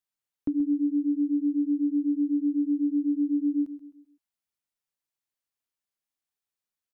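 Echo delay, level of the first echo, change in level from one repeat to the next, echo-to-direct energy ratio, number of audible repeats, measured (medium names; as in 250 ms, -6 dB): 130 ms, -13.0 dB, -8.0 dB, -12.0 dB, 3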